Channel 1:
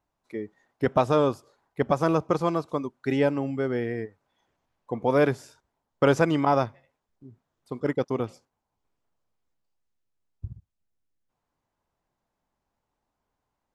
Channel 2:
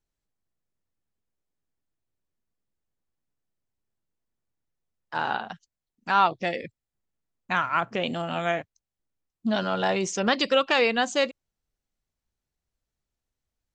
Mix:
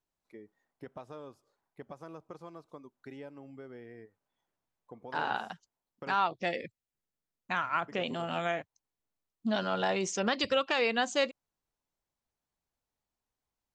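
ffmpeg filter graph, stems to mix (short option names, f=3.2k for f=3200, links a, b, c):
-filter_complex "[0:a]acompressor=threshold=-32dB:ratio=3,volume=-13dB,asplit=3[a][b][c];[a]atrim=end=6.16,asetpts=PTS-STARTPTS,afade=t=out:st=6.156:d=0.004:c=hsin[d];[b]atrim=start=6.16:end=7.88,asetpts=PTS-STARTPTS,volume=0[e];[c]atrim=start=7.88,asetpts=PTS-STARTPTS,afade=t=in:d=0.004:c=hsin[f];[d][e][f]concat=n=3:v=0:a=1[g];[1:a]alimiter=limit=-13.5dB:level=0:latency=1:release=217,volume=-4dB[h];[g][h]amix=inputs=2:normalize=0,lowshelf=f=110:g=-7"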